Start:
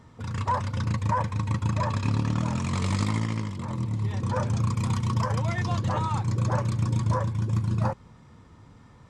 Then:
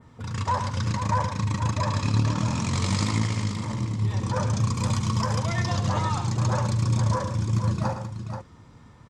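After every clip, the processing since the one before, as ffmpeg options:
-filter_complex "[0:a]adynamicequalizer=threshold=0.00178:dfrequency=5600:dqfactor=0.92:tfrequency=5600:tqfactor=0.92:attack=5:release=100:ratio=0.375:range=3.5:mode=boostabove:tftype=bell,asplit=2[a][b];[b]aecho=0:1:74|111|191|483:0.237|0.335|0.112|0.376[c];[a][c]amix=inputs=2:normalize=0"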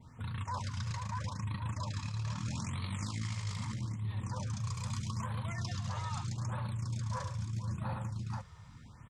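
-af "equalizer=f=440:t=o:w=1.7:g=-9.5,areverse,acompressor=threshold=-33dB:ratio=8,areverse,afftfilt=real='re*(1-between(b*sr/1024,240*pow(6500/240,0.5+0.5*sin(2*PI*0.79*pts/sr))/1.41,240*pow(6500/240,0.5+0.5*sin(2*PI*0.79*pts/sr))*1.41))':imag='im*(1-between(b*sr/1024,240*pow(6500/240,0.5+0.5*sin(2*PI*0.79*pts/sr))/1.41,240*pow(6500/240,0.5+0.5*sin(2*PI*0.79*pts/sr))*1.41))':win_size=1024:overlap=0.75,volume=-1dB"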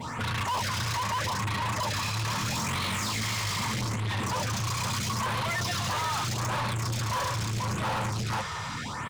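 -filter_complex "[0:a]asplit=2[a][b];[b]highpass=f=720:p=1,volume=35dB,asoftclip=type=tanh:threshold=-25dB[c];[a][c]amix=inputs=2:normalize=0,lowpass=f=6.1k:p=1,volume=-6dB,volume=2dB"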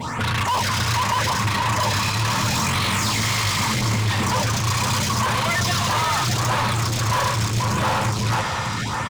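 -af "aecho=1:1:607:0.422,volume=8dB"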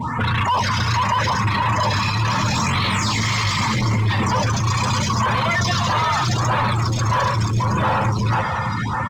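-filter_complex "[0:a]afftdn=nr=18:nf=-27,asplit=2[a][b];[b]alimiter=level_in=1dB:limit=-24dB:level=0:latency=1,volume=-1dB,volume=0.5dB[c];[a][c]amix=inputs=2:normalize=0"

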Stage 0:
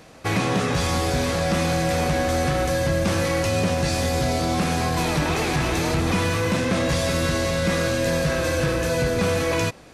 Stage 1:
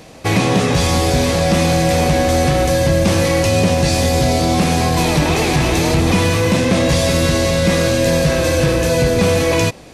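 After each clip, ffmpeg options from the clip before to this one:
-af "equalizer=f=1.4k:t=o:w=0.74:g=-6.5,volume=8dB"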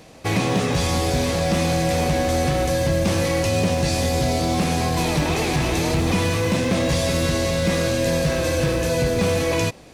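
-af "acrusher=bits=9:mode=log:mix=0:aa=0.000001,volume=-6dB"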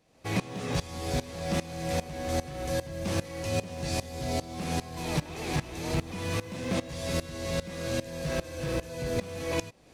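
-af "aeval=exprs='val(0)*pow(10,-19*if(lt(mod(-2.5*n/s,1),2*abs(-2.5)/1000),1-mod(-2.5*n/s,1)/(2*abs(-2.5)/1000),(mod(-2.5*n/s,1)-2*abs(-2.5)/1000)/(1-2*abs(-2.5)/1000))/20)':c=same,volume=-5.5dB"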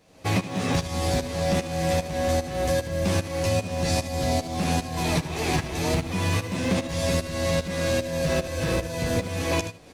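-af "aecho=1:1:11|76:0.562|0.211,acompressor=threshold=-28dB:ratio=6,volume=8dB"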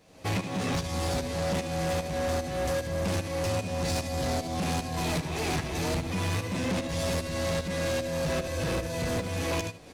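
-af "asoftclip=type=tanh:threshold=-25dB"

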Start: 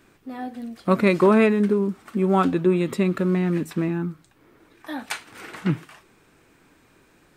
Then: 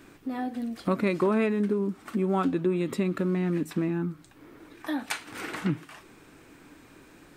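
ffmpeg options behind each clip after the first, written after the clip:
-af "equalizer=f=290:w=4.7:g=6,acompressor=threshold=-35dB:ratio=2,volume=3.5dB"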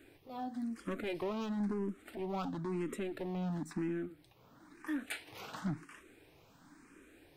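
-filter_complex "[0:a]asoftclip=type=hard:threshold=-25dB,asplit=2[a][b];[b]afreqshift=0.98[c];[a][c]amix=inputs=2:normalize=1,volume=-5.5dB"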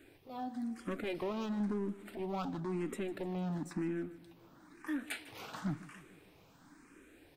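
-af "aecho=1:1:151|302|453|604|755:0.126|0.073|0.0424|0.0246|0.0142"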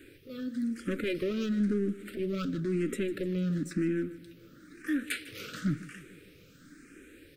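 -af "asuperstop=centerf=850:order=8:qfactor=1.1,volume=7dB"

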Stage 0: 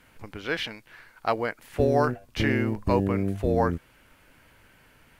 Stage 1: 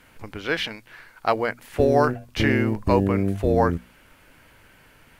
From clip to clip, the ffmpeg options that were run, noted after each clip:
-af "bandreject=f=60:t=h:w=6,bandreject=f=120:t=h:w=6,bandreject=f=180:t=h:w=6,bandreject=f=240:t=h:w=6,volume=4dB"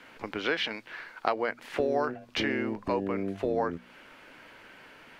-filter_complex "[0:a]acompressor=threshold=-29dB:ratio=4,acrossover=split=200 5700:gain=0.141 1 0.178[a][b][c];[a][b][c]amix=inputs=3:normalize=0,volume=3.5dB"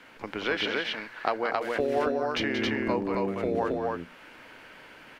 -af "aecho=1:1:180.8|271.1:0.398|0.794"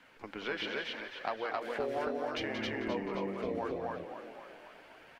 -filter_complex "[0:a]asplit=8[a][b][c][d][e][f][g][h];[b]adelay=263,afreqshift=47,volume=-9dB[i];[c]adelay=526,afreqshift=94,volume=-14dB[j];[d]adelay=789,afreqshift=141,volume=-19.1dB[k];[e]adelay=1052,afreqshift=188,volume=-24.1dB[l];[f]adelay=1315,afreqshift=235,volume=-29.1dB[m];[g]adelay=1578,afreqshift=282,volume=-34.2dB[n];[h]adelay=1841,afreqshift=329,volume=-39.2dB[o];[a][i][j][k][l][m][n][o]amix=inputs=8:normalize=0,flanger=delay=1:depth=5.1:regen=-49:speed=0.77:shape=triangular,volume=-4.5dB"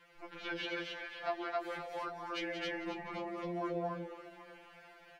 -af "afftfilt=real='re*2.83*eq(mod(b,8),0)':imag='im*2.83*eq(mod(b,8),0)':win_size=2048:overlap=0.75"

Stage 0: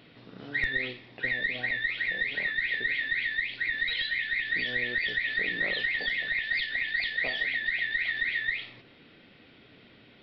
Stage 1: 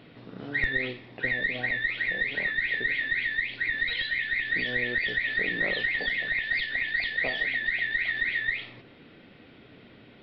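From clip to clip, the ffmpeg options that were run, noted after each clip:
-af "highshelf=f=2.3k:g=-8.5,volume=5dB"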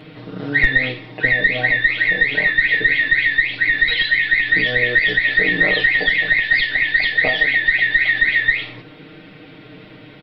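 -af "aecho=1:1:6.5:0.99,volume=8.5dB"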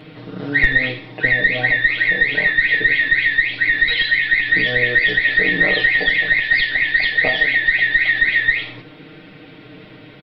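-af "aecho=1:1:81:0.178"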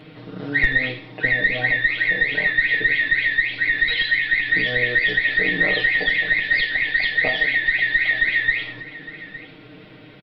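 -af "aecho=1:1:861:0.133,volume=-3.5dB"

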